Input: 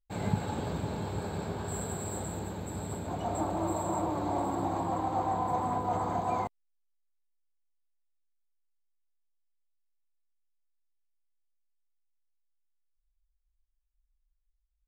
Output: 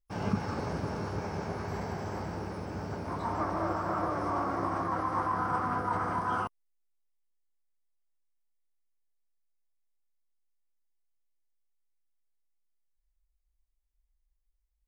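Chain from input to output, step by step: peaking EQ 2.5 kHz -6.5 dB 0.46 oct; formant shift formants +5 st

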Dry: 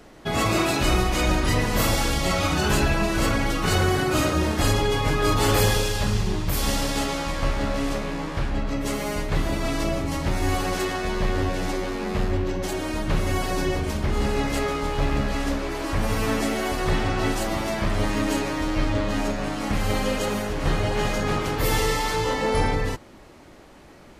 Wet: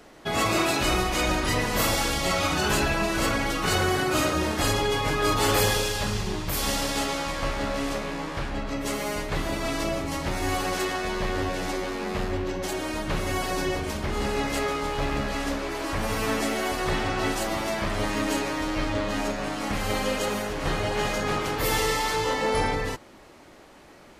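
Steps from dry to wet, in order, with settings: bass shelf 240 Hz -7.5 dB

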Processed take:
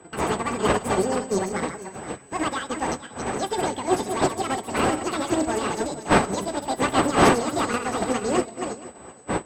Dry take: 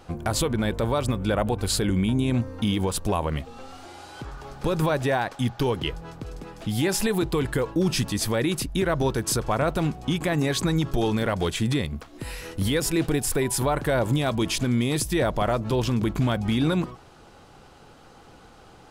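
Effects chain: backward echo that repeats 472 ms, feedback 57%, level -4 dB; wind noise 410 Hz -26 dBFS; high-pass 42 Hz; peaking EQ 9.1 kHz -14 dB 1.1 oct; one-sided clip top -20.5 dBFS, bottom -11 dBFS; whistle 4 kHz -36 dBFS; distance through air 87 m; feedback echo behind a high-pass 559 ms, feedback 71%, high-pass 3.4 kHz, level -14.5 dB; on a send at -9 dB: reverberation RT60 1.8 s, pre-delay 5 ms; on the sum: speed mistake 7.5 ips tape played at 15 ips; upward expansion 2.5:1, over -31 dBFS; trim +4 dB

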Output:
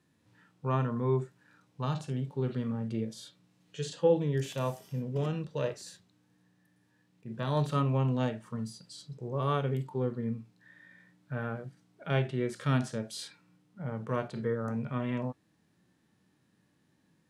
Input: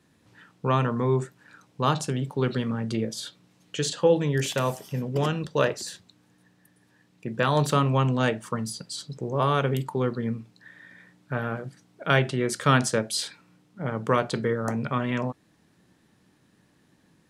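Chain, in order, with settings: harmonic-percussive split percussive -15 dB; trim -4.5 dB

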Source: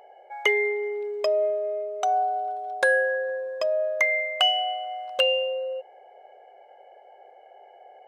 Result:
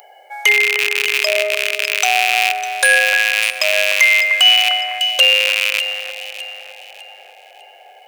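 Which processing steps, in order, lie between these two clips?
rattle on loud lows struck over -48 dBFS, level -17 dBFS; high-pass 61 Hz; differentiator; on a send: echo whose repeats swap between lows and highs 301 ms, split 2.2 kHz, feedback 60%, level -9.5 dB; on the sum: loudness maximiser +25.5 dB; trim -1 dB

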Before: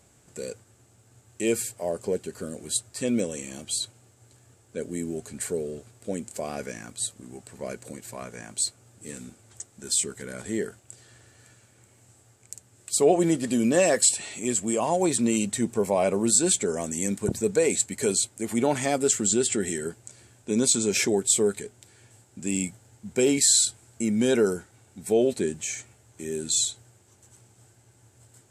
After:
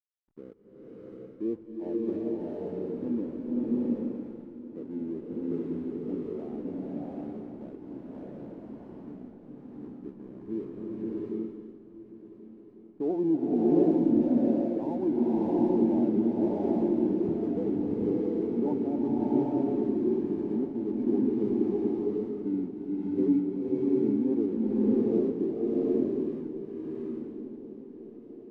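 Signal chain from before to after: in parallel at -11 dB: wavefolder -21 dBFS; on the sum: cascade formant filter u; hysteresis with a dead band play -52 dBFS; shuffle delay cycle 1445 ms, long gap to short 3:1, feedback 52%, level -16 dB; swelling reverb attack 750 ms, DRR -6 dB

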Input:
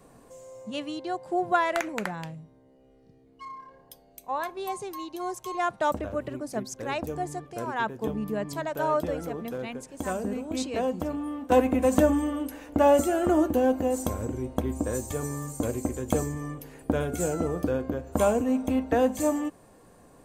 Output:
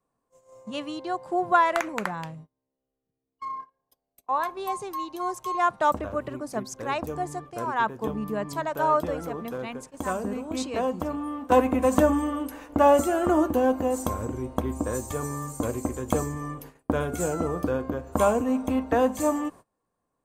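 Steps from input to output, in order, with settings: gate -44 dBFS, range -27 dB; peaking EQ 1.1 kHz +7.5 dB 0.66 oct

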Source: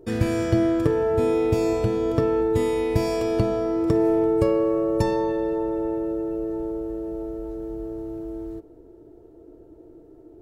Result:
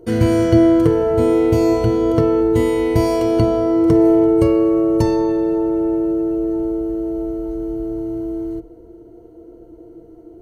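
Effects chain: rippled EQ curve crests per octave 1.9, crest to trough 11 dB; trim +4 dB

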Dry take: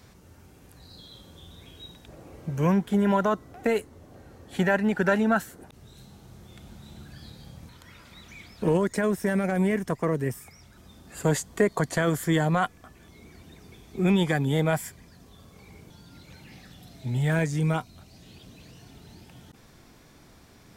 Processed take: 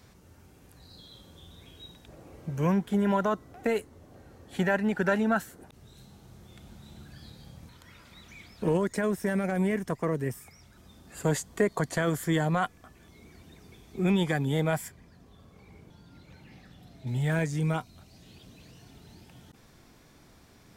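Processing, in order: 14.88–17.07 s: treble shelf 3.6 kHz -9.5 dB; trim -3 dB

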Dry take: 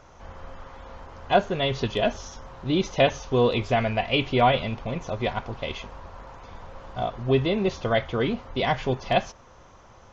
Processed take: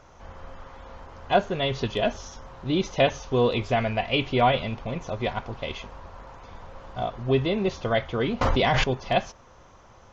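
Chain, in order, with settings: 8.41–8.84 s: level flattener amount 100%; trim -1 dB

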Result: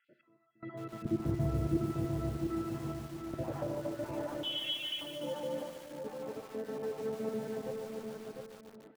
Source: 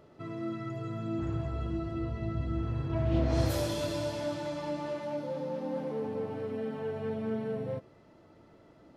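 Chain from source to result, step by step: random holes in the spectrogram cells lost 33%; Bessel high-pass 260 Hz, order 2; low-pass that closes with the level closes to 850 Hz, closed at -31.5 dBFS; 1.05–1.77 s: tilt EQ -4.5 dB/octave; trance gate "x..xxxxxxxx.x" 72 bpm -24 dB; distance through air 380 m; feedback delay 700 ms, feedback 30%, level -5 dB; reverberation RT60 0.75 s, pre-delay 10 ms, DRR 12.5 dB; 4.43–5.01 s: frequency inversion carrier 3.6 kHz; bit-crushed delay 146 ms, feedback 80%, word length 8-bit, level -8 dB

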